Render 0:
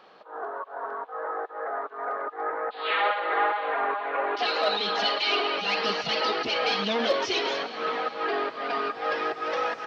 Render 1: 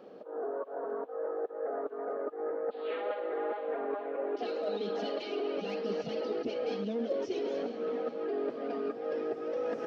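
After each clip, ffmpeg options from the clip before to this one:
-af "equalizer=f=125:t=o:w=1:g=3,equalizer=f=250:t=o:w=1:g=12,equalizer=f=500:t=o:w=1:g=10,equalizer=f=1k:t=o:w=1:g=-9,equalizer=f=2k:t=o:w=1:g=-6,equalizer=f=4k:t=o:w=1:g=-9,areverse,acompressor=threshold=-31dB:ratio=4,areverse,volume=-2dB"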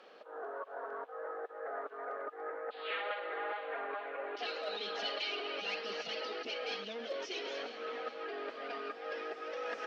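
-af "bandpass=f=1.7k:t=q:w=0.68:csg=0,tiltshelf=f=1.5k:g=-8,volume=5.5dB"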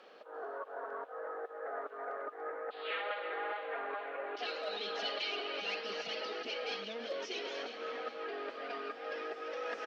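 -af "aecho=1:1:343:0.224"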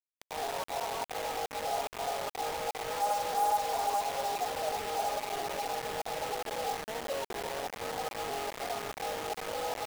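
-af "lowpass=f=840:t=q:w=6.6,acrusher=bits=5:mix=0:aa=0.000001,volume=-1dB"

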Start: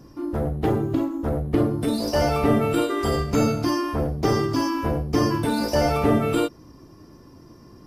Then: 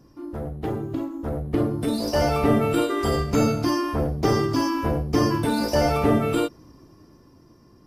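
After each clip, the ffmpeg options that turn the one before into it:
-af "dynaudnorm=f=230:g=13:m=11.5dB,volume=-6.5dB"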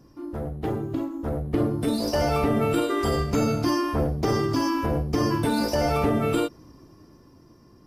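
-af "alimiter=limit=-13.5dB:level=0:latency=1:release=98"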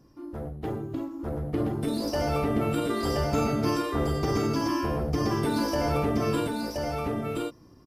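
-af "aecho=1:1:1024:0.708,volume=-4.5dB"

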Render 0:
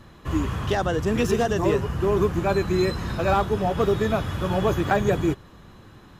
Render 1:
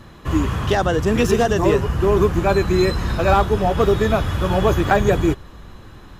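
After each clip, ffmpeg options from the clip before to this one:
-af "asubboost=boost=3:cutoff=70,volume=5.5dB"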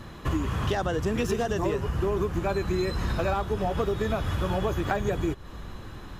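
-af "acompressor=threshold=-24dB:ratio=6"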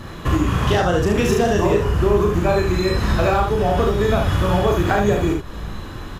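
-af "aecho=1:1:34|73:0.668|0.631,volume=7dB"

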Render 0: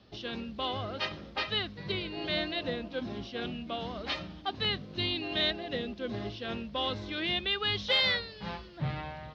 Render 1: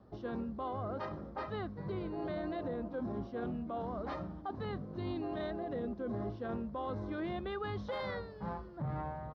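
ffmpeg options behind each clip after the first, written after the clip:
-af "firequalizer=gain_entry='entry(1100,0);entry(2700,-27);entry(5400,-25)':delay=0.05:min_phase=1,alimiter=level_in=7.5dB:limit=-24dB:level=0:latency=1:release=14,volume=-7.5dB,aemphasis=mode=production:type=50fm,volume=1dB"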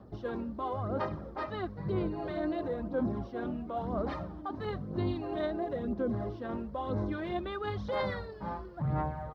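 -af "aphaser=in_gain=1:out_gain=1:delay=3.4:decay=0.47:speed=1:type=sinusoidal,volume=2.5dB"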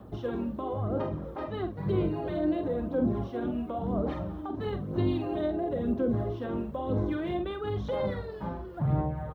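-filter_complex "[0:a]acrossover=split=620[a][b];[b]acompressor=threshold=-47dB:ratio=6[c];[a][c]amix=inputs=2:normalize=0,aexciter=amount=1:drive=6.6:freq=2.6k,asplit=2[d][e];[e]adelay=46,volume=-8dB[f];[d][f]amix=inputs=2:normalize=0,volume=4.5dB"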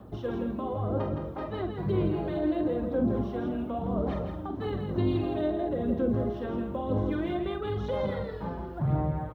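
-af "aecho=1:1:165:0.473"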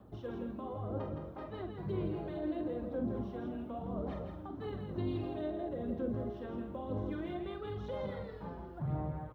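-af "flanger=delay=6.7:depth=6.2:regen=90:speed=1.3:shape=sinusoidal,volume=-4.5dB"

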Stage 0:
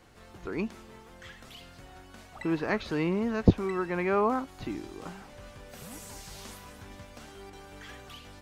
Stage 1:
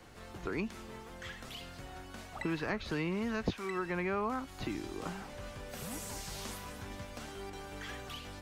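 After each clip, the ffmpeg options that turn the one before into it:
-filter_complex "[0:a]acrossover=split=150|1300[a][b][c];[a]acompressor=threshold=-45dB:ratio=4[d];[b]acompressor=threshold=-39dB:ratio=4[e];[c]acompressor=threshold=-42dB:ratio=4[f];[d][e][f]amix=inputs=3:normalize=0,volume=2.5dB"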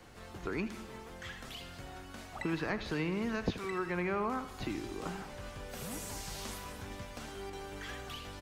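-af "aecho=1:1:79|158|237|316|395|474:0.211|0.125|0.0736|0.0434|0.0256|0.0151"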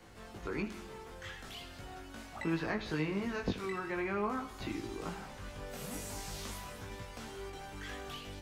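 -af "flanger=delay=18:depth=2.7:speed=0.42,volume=2dB"

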